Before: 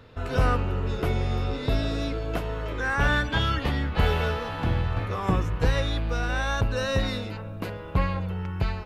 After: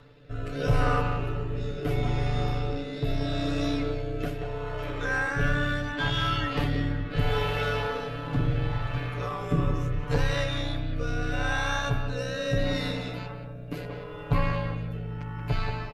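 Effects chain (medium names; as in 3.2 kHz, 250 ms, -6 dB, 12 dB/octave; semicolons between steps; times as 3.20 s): in parallel at -3 dB: peak limiter -17 dBFS, peak gain reduction 7.5 dB; on the sum: granular stretch 1.8×, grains 31 ms; speakerphone echo 180 ms, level -6 dB; rotary cabinet horn 0.75 Hz; trim -3 dB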